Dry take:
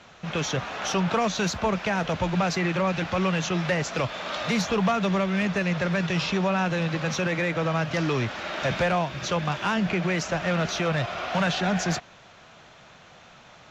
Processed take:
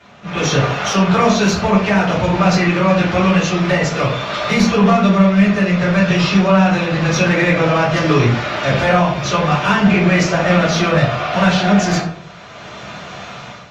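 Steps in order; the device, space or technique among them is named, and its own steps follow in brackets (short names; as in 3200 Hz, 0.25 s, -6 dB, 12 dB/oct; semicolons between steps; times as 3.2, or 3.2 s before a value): far-field microphone of a smart speaker (reverb RT60 0.60 s, pre-delay 3 ms, DRR -8 dB; HPF 83 Hz 6 dB/oct; AGC; gain -1 dB; Opus 32 kbps 48000 Hz)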